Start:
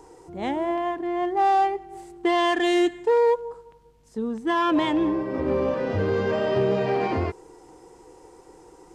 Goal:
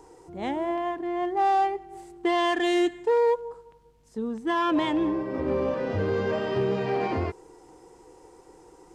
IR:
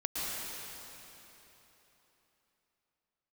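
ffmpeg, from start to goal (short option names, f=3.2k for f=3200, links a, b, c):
-filter_complex "[0:a]asettb=1/sr,asplit=3[a][b][c];[a]atrim=end=6.384[d];[b]atrim=start=6.38:end=6.93,asetpts=PTS-STARTPTS,afade=t=in:d=0.004:c=qsin,afade=t=out:st=0.546:d=0.004:c=qsin,equalizer=f=610:w=5.2:g=-7[e];[c]atrim=start=6.926[f];[d][e]acrossfade=d=0.004:c1=hsin:c2=qsin[g];[g][f]acrossfade=d=0.004:c1=qsin:c2=hsin,volume=-2.5dB"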